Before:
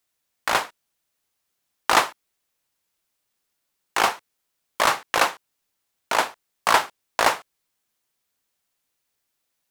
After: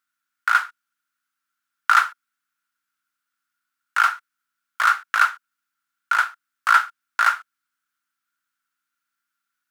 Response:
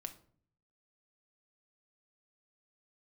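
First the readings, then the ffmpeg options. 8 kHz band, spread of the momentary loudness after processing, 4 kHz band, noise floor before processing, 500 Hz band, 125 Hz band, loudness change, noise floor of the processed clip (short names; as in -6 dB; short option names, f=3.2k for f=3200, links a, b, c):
-7.5 dB, 10 LU, -6.5 dB, -78 dBFS, -20.5 dB, under -40 dB, +2.5 dB, -83 dBFS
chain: -af "aeval=exprs='val(0)+0.00141*(sin(2*PI*60*n/s)+sin(2*PI*2*60*n/s)/2+sin(2*PI*3*60*n/s)/3+sin(2*PI*4*60*n/s)/4+sin(2*PI*5*60*n/s)/5)':c=same,highpass=f=1.4k:t=q:w=12,volume=-8dB"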